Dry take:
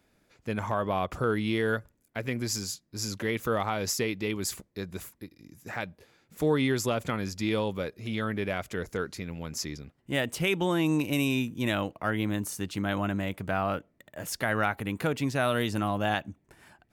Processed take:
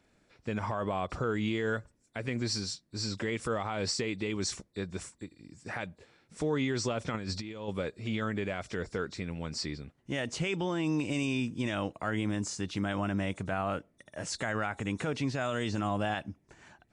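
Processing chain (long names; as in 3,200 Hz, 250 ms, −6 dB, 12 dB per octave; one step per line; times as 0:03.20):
hearing-aid frequency compression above 3,400 Hz 1.5 to 1
brickwall limiter −22 dBFS, peak gain reduction 7.5 dB
0:07.14–0:07.68: compressor whose output falls as the input rises −36 dBFS, ratio −0.5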